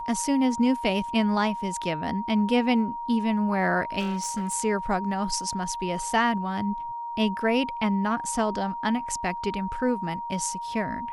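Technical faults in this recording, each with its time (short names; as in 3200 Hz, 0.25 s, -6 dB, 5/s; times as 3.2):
tone 940 Hz -31 dBFS
3.99–4.54 clipped -24 dBFS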